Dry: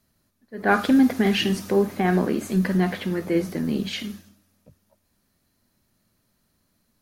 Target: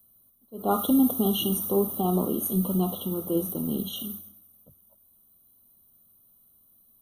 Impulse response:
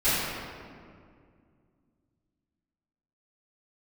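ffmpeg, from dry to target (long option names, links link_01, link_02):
-filter_complex "[0:a]aexciter=amount=14.5:drive=5.9:freq=9500,asettb=1/sr,asplit=3[link_01][link_02][link_03];[link_01]atrim=end=3.074[link_04];[link_02]atrim=start=3.07:end=4.11,asetpts=PTS-STARTPTS,afade=type=in:duration=0.004:curve=qsin,afade=type=out:start_time=1.036:duration=0.004:curve=qsin,aeval=exprs='0.299*(cos(1*acos(clip(val(0)/0.299,-1,1)))-cos(1*PI/2))+0.00473*(cos(7*acos(clip(val(0)/0.299,-1,1)))-cos(7*PI/2))':channel_layout=same[link_05];[link_03]atrim=start=4.106[link_06];[link_04][link_05]acrossfade=duration=0.004:curve1=hsin:curve2=qsin[link_07];[link_07][link_06]acrossfade=duration=0.004:curve1=qsin:curve2=hsin,afftfilt=real='re*eq(mod(floor(b*sr/1024/1400),2),0)':imag='im*eq(mod(floor(b*sr/1024/1400),2),0)':win_size=1024:overlap=0.75,volume=-4dB"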